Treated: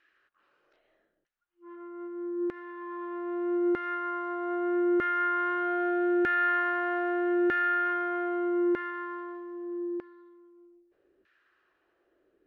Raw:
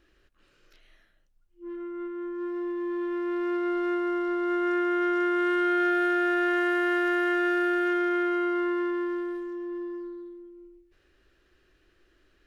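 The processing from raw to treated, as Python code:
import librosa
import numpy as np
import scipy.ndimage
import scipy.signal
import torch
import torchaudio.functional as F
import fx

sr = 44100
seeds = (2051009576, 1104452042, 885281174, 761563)

y = fx.filter_lfo_bandpass(x, sr, shape='saw_down', hz=0.8, low_hz=360.0, high_hz=1900.0, q=1.7)
y = y * librosa.db_to_amplitude(3.5)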